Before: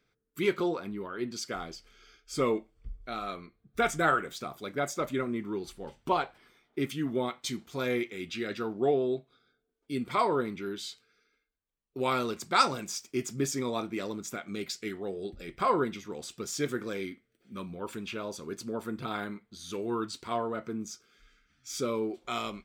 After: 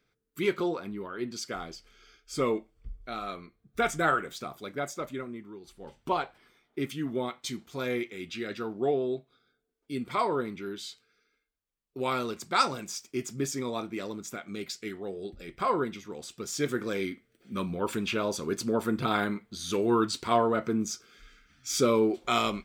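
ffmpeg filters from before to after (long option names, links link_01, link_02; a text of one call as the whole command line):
ffmpeg -i in.wav -af "volume=19.5dB,afade=type=out:start_time=4.48:duration=1.12:silence=0.251189,afade=type=in:start_time=5.6:duration=0.38:silence=0.281838,afade=type=in:start_time=16.35:duration=1.29:silence=0.375837" out.wav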